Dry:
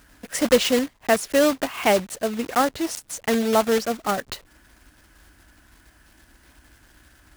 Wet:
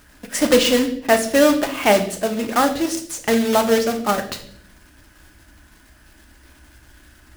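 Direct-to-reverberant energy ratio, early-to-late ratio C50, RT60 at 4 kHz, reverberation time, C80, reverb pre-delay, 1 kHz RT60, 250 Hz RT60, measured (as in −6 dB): 5.0 dB, 11.5 dB, 0.55 s, 0.65 s, 14.5 dB, 3 ms, 0.50 s, 1.1 s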